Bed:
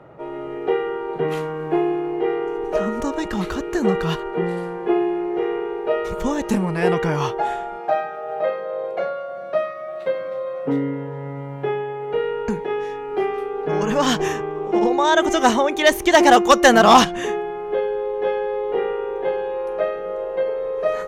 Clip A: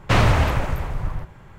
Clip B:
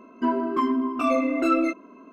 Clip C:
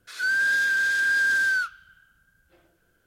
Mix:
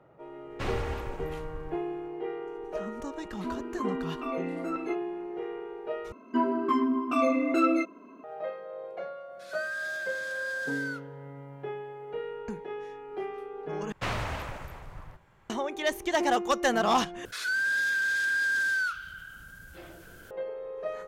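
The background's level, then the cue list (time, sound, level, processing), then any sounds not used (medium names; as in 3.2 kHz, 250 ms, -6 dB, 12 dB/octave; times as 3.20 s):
bed -13.5 dB
0.50 s: add A -17 dB + comb 3.6 ms, depth 41%
3.22 s: add B -11.5 dB + step-sequenced notch 5.2 Hz 490–7100 Hz
6.12 s: replace with B -2.5 dB + high-pass 76 Hz
9.32 s: add C -12.5 dB
13.92 s: replace with A -11.5 dB + bass shelf 320 Hz -8 dB
17.25 s: replace with C -5.5 dB + level flattener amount 50%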